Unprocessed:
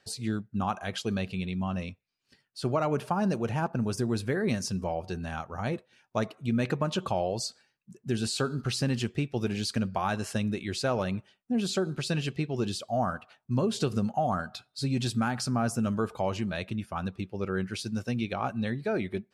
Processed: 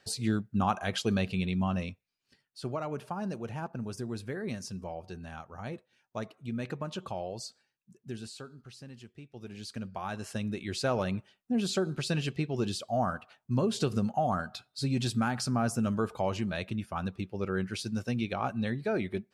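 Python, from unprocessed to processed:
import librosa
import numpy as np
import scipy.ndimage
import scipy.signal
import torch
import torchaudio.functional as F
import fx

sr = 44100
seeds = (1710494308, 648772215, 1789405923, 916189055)

y = fx.gain(x, sr, db=fx.line((1.63, 2.0), (2.84, -8.0), (8.02, -8.0), (8.59, -19.5), (9.18, -19.5), (9.65, -11.0), (10.87, -1.0)))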